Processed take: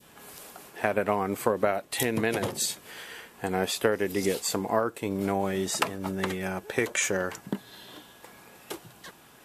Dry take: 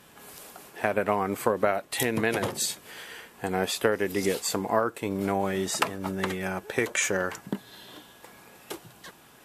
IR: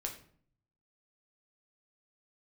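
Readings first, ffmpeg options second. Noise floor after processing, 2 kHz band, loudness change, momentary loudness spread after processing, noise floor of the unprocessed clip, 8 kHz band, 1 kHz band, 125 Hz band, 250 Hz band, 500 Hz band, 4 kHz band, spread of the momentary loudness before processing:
−54 dBFS, −1.5 dB, −0.5 dB, 18 LU, −54 dBFS, 0.0 dB, −1.5 dB, 0.0 dB, 0.0 dB, −0.5 dB, −0.5 dB, 19 LU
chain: -af "adynamicequalizer=threshold=0.0126:dfrequency=1400:dqfactor=0.81:tfrequency=1400:tqfactor=0.81:attack=5:release=100:ratio=0.375:range=2:mode=cutabove:tftype=bell"

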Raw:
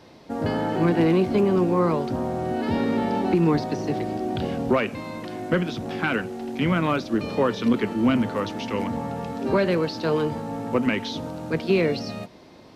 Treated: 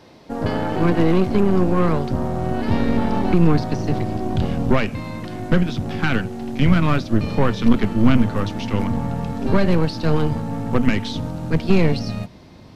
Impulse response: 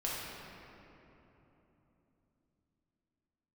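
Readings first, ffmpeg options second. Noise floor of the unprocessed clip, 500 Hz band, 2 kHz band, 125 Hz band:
−48 dBFS, +0.5 dB, +2.0 dB, +8.5 dB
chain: -af "aeval=exprs='0.398*(cos(1*acos(clip(val(0)/0.398,-1,1)))-cos(1*PI/2))+0.0398*(cos(6*acos(clip(val(0)/0.398,-1,1)))-cos(6*PI/2))':channel_layout=same,asubboost=boost=3.5:cutoff=190,volume=2dB"

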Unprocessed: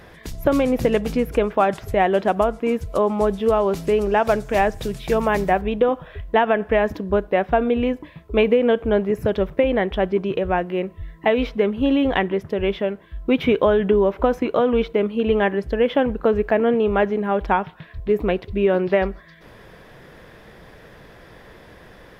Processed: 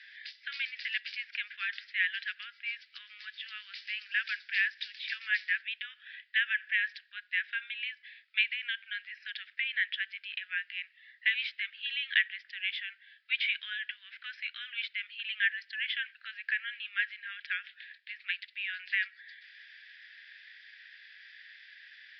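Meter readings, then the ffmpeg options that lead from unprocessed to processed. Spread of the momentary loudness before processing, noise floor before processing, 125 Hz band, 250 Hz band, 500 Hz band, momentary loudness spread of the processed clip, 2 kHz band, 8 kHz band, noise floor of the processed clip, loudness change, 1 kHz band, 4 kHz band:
6 LU, −46 dBFS, below −40 dB, below −40 dB, below −40 dB, 21 LU, −1.0 dB, can't be measured, −64 dBFS, −13.0 dB, below −30 dB, 0.0 dB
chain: -af "asuperpass=centerf=3800:order=20:qfactor=0.57,aresample=11025,aresample=44100"

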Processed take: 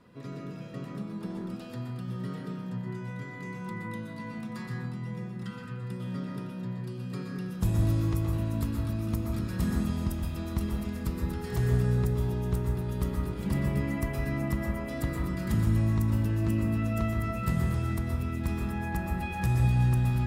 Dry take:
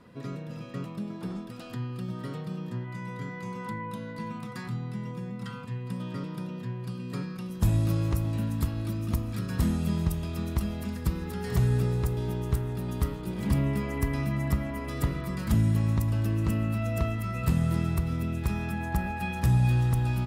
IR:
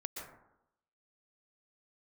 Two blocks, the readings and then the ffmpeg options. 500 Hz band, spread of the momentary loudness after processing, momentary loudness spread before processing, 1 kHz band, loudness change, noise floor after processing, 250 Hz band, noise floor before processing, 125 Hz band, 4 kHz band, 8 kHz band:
−0.5 dB, 12 LU, 12 LU, −1.5 dB, −1.0 dB, −41 dBFS, −0.5 dB, −40 dBFS, −1.0 dB, −2.5 dB, −2.5 dB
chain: -filter_complex "[0:a]bandreject=frequency=77.32:width_type=h:width=4,bandreject=frequency=154.64:width_type=h:width=4,bandreject=frequency=231.96:width_type=h:width=4,bandreject=frequency=309.28:width_type=h:width=4,bandreject=frequency=386.6:width_type=h:width=4,bandreject=frequency=463.92:width_type=h:width=4,bandreject=frequency=541.24:width_type=h:width=4,bandreject=frequency=618.56:width_type=h:width=4,bandreject=frequency=695.88:width_type=h:width=4,bandreject=frequency=773.2:width_type=h:width=4,bandreject=frequency=850.52:width_type=h:width=4,bandreject=frequency=927.84:width_type=h:width=4,bandreject=frequency=1005.16:width_type=h:width=4,bandreject=frequency=1082.48:width_type=h:width=4,bandreject=frequency=1159.8:width_type=h:width=4,bandreject=frequency=1237.12:width_type=h:width=4,bandreject=frequency=1314.44:width_type=h:width=4,bandreject=frequency=1391.76:width_type=h:width=4,bandreject=frequency=1469.08:width_type=h:width=4,bandreject=frequency=1546.4:width_type=h:width=4,bandreject=frequency=1623.72:width_type=h:width=4,bandreject=frequency=1701.04:width_type=h:width=4,bandreject=frequency=1778.36:width_type=h:width=4,bandreject=frequency=1855.68:width_type=h:width=4,bandreject=frequency=1933:width_type=h:width=4,bandreject=frequency=2010.32:width_type=h:width=4,bandreject=frequency=2087.64:width_type=h:width=4,bandreject=frequency=2164.96:width_type=h:width=4,bandreject=frequency=2242.28:width_type=h:width=4,bandreject=frequency=2319.6:width_type=h:width=4[link_01];[1:a]atrim=start_sample=2205[link_02];[link_01][link_02]afir=irnorm=-1:irlink=0"

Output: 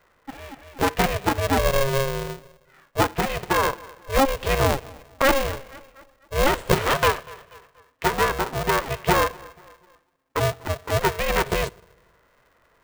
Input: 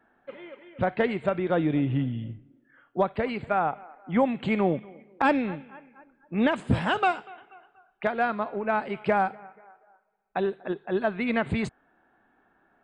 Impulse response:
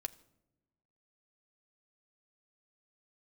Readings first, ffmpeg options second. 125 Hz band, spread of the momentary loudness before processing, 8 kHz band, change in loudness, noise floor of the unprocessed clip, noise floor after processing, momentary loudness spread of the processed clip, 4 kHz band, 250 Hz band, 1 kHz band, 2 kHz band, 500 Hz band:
+4.5 dB, 15 LU, can't be measured, +4.0 dB, −67 dBFS, −63 dBFS, 14 LU, +12.0 dB, −2.5 dB, +4.5 dB, +6.0 dB, +4.0 dB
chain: -filter_complex "[0:a]asplit=2[link_01][link_02];[1:a]atrim=start_sample=2205[link_03];[link_02][link_03]afir=irnorm=-1:irlink=0,volume=-2.5dB[link_04];[link_01][link_04]amix=inputs=2:normalize=0,aeval=exprs='val(0)*sgn(sin(2*PI*270*n/s))':channel_layout=same"

